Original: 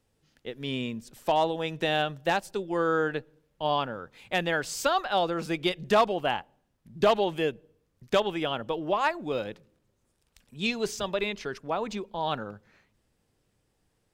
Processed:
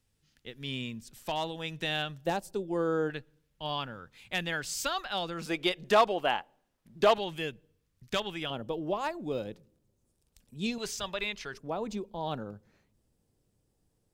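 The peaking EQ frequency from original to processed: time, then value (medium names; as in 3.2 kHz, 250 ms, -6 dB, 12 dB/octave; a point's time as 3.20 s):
peaking EQ -10.5 dB 2.7 oct
560 Hz
from 2.25 s 2 kHz
from 3.10 s 560 Hz
from 5.46 s 85 Hz
from 7.18 s 520 Hz
from 8.50 s 1.7 kHz
from 10.78 s 330 Hz
from 11.54 s 1.9 kHz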